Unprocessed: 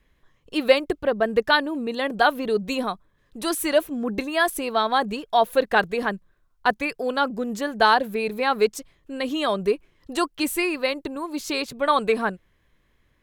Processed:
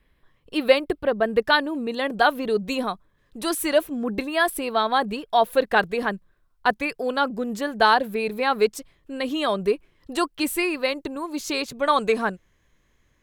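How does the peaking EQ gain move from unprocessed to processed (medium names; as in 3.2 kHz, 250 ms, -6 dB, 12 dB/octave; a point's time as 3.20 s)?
peaking EQ 6.5 kHz 0.31 oct
-12 dB
from 1.45 s -1.5 dB
from 4.18 s -9.5 dB
from 5.31 s -3 dB
from 10.83 s +3 dB
from 11.80 s +11.5 dB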